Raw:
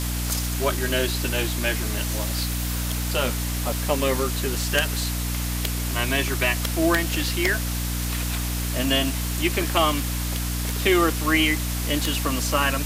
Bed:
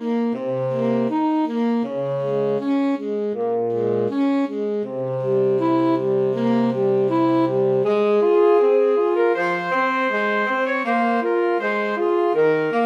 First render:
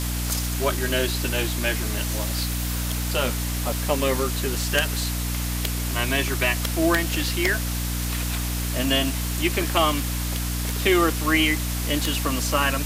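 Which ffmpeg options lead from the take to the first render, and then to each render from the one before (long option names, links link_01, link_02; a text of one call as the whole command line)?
ffmpeg -i in.wav -af anull out.wav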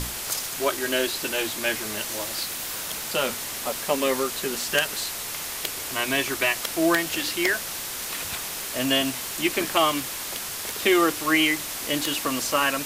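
ffmpeg -i in.wav -af "bandreject=frequency=60:width_type=h:width=6,bandreject=frequency=120:width_type=h:width=6,bandreject=frequency=180:width_type=h:width=6,bandreject=frequency=240:width_type=h:width=6,bandreject=frequency=300:width_type=h:width=6" out.wav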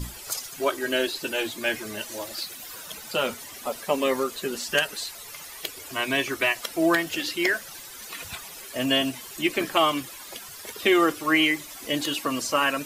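ffmpeg -i in.wav -af "afftdn=noise_reduction=14:noise_floor=-33" out.wav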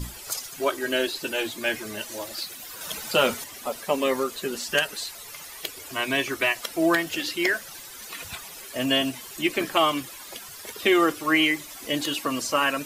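ffmpeg -i in.wav -filter_complex "[0:a]asplit=3[link_01][link_02][link_03];[link_01]atrim=end=2.812[link_04];[link_02]atrim=start=2.808:end=3.442,asetpts=PTS-STARTPTS,volume=5dB[link_05];[link_03]atrim=start=3.438[link_06];[link_04][link_05]acrossfade=duration=0.004:curve1=hsin:curve2=hsin[link_07];[link_07][link_06]acrossfade=duration=0.004:curve1=hsin:curve2=hsin" out.wav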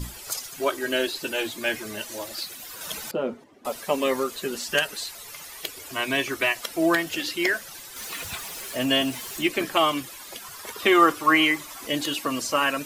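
ffmpeg -i in.wav -filter_complex "[0:a]asettb=1/sr,asplit=3[link_01][link_02][link_03];[link_01]atrim=end=3.114[link_04];[link_02]atrim=start=3.11:end=3.65,asetpts=PTS-STARTPTS,afade=type=in:duration=0.004:curve=qsin,afade=type=out:start_time=0.536:duration=0.004:curve=qsin,bandpass=frequency=300:width_type=q:width=1.2[link_05];[link_03]atrim=start=3.646[link_06];[link_04][link_05]acrossfade=duration=0.004:curve1=hsin:curve2=qsin[link_07];[link_07][link_06]acrossfade=duration=0.004:curve1=qsin:curve2=hsin,asettb=1/sr,asplit=3[link_08][link_09][link_10];[link_08]atrim=end=7.964[link_11];[link_09]atrim=start=7.96:end=9.48,asetpts=PTS-STARTPTS,afade=type=in:duration=0.004:curve=qsin,afade=type=out:start_time=1.516:duration=0.004:curve=qsin,aeval=exprs='val(0)+0.5*0.0141*sgn(val(0))':channel_layout=same[link_12];[link_10]atrim=start=9.476[link_13];[link_11][link_12]acrossfade=duration=0.004:curve1=hsin:curve2=qsin[link_14];[link_14][link_13]acrossfade=duration=0.004:curve1=qsin:curve2=hsin,asettb=1/sr,asplit=3[link_15][link_16][link_17];[link_15]atrim=end=10.444[link_18];[link_16]atrim=start=10.44:end=11.87,asetpts=PTS-STARTPTS,afade=type=in:duration=0.004:curve=qsin,afade=type=out:start_time=1.426:duration=0.004:curve=qsin,equalizer=frequency=1100:width_type=o:width=0.9:gain=8[link_19];[link_17]atrim=start=11.866[link_20];[link_18][link_19]acrossfade=duration=0.004:curve1=hsin:curve2=qsin[link_21];[link_21][link_20]acrossfade=duration=0.004:curve1=qsin:curve2=hsin" out.wav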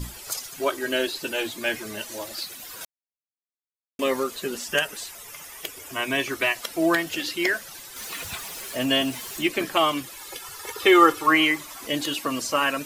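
ffmpeg -i in.wav -filter_complex "[0:a]asettb=1/sr,asplit=3[link_01][link_02][link_03];[link_01]atrim=end=4.574[link_04];[link_02]atrim=start=4.57:end=6.2,asetpts=PTS-STARTPTS,afade=type=in:duration=0.004:curve=qsin,afade=type=out:start_time=1.626:duration=0.004:curve=qsin,equalizer=frequency=4200:width_type=o:width=0.28:gain=-9[link_05];[link_03]atrim=start=6.196[link_06];[link_04][link_05]acrossfade=duration=0.004:curve1=hsin:curve2=qsin[link_07];[link_07][link_06]acrossfade=duration=0.004:curve1=qsin:curve2=hsin,asettb=1/sr,asplit=3[link_08][link_09][link_10];[link_08]atrim=end=10.164[link_11];[link_09]atrim=start=10.16:end=11.27,asetpts=PTS-STARTPTS,afade=type=in:duration=0.004:curve=qsin,afade=type=out:start_time=1.106:duration=0.004:curve=qsin,aecho=1:1:2.3:0.65,atrim=end_sample=48951[link_12];[link_10]atrim=start=11.266[link_13];[link_11][link_12]acrossfade=duration=0.004:curve1=hsin:curve2=qsin[link_14];[link_14][link_13]acrossfade=duration=0.004:curve1=qsin:curve2=hsin,asplit=3[link_15][link_16][link_17];[link_15]atrim=end=2.85,asetpts=PTS-STARTPTS,afade=type=out:start_time=2.846:duration=0.004:curve=hsin[link_18];[link_16]atrim=start=2.85:end=3.99,asetpts=PTS-STARTPTS,volume=0[link_19];[link_17]atrim=start=3.99,asetpts=PTS-STARTPTS,afade=type=in:duration=0.004:curve=hsin[link_20];[link_18][link_19][link_20]concat=n=3:v=0:a=1" out.wav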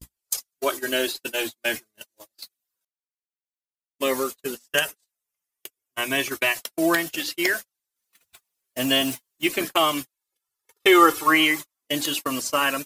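ffmpeg -i in.wav -af "agate=range=-50dB:threshold=-29dB:ratio=16:detection=peak,highshelf=frequency=5800:gain=9" out.wav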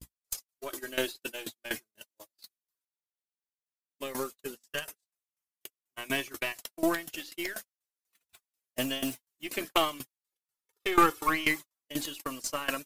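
ffmpeg -i in.wav -af "aeval=exprs='(tanh(2.82*val(0)+0.6)-tanh(0.6))/2.82':channel_layout=same,aeval=exprs='val(0)*pow(10,-18*if(lt(mod(4.1*n/s,1),2*abs(4.1)/1000),1-mod(4.1*n/s,1)/(2*abs(4.1)/1000),(mod(4.1*n/s,1)-2*abs(4.1)/1000)/(1-2*abs(4.1)/1000))/20)':channel_layout=same" out.wav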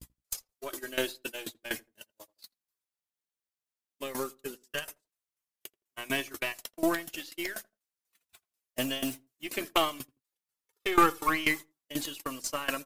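ffmpeg -i in.wav -filter_complex "[0:a]asplit=2[link_01][link_02];[link_02]adelay=83,lowpass=frequency=850:poles=1,volume=-22.5dB,asplit=2[link_03][link_04];[link_04]adelay=83,lowpass=frequency=850:poles=1,volume=0.24[link_05];[link_01][link_03][link_05]amix=inputs=3:normalize=0" out.wav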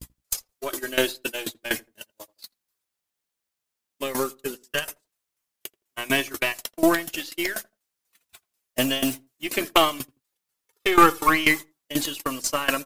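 ffmpeg -i in.wav -af "volume=8.5dB,alimiter=limit=-2dB:level=0:latency=1" out.wav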